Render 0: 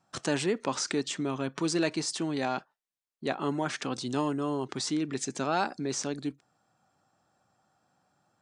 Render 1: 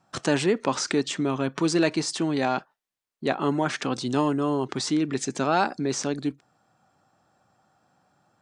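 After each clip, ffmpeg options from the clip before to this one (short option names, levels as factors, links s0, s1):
-af "highshelf=f=4700:g=-5,volume=2"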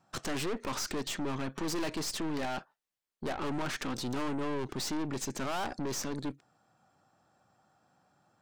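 -af "aeval=exprs='(tanh(39.8*val(0)+0.65)-tanh(0.65))/39.8':c=same"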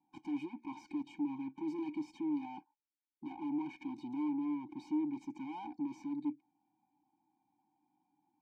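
-filter_complex "[0:a]asplit=3[s0][s1][s2];[s0]bandpass=f=300:t=q:w=8,volume=1[s3];[s1]bandpass=f=870:t=q:w=8,volume=0.501[s4];[s2]bandpass=f=2240:t=q:w=8,volume=0.355[s5];[s3][s4][s5]amix=inputs=3:normalize=0,afftfilt=real='re*eq(mod(floor(b*sr/1024/360),2),0)':imag='im*eq(mod(floor(b*sr/1024/360),2),0)':win_size=1024:overlap=0.75,volume=1.41"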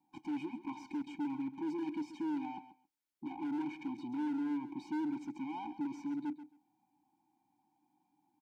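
-af "asoftclip=type=hard:threshold=0.0168,aecho=1:1:134|268:0.224|0.0336,volume=1.26"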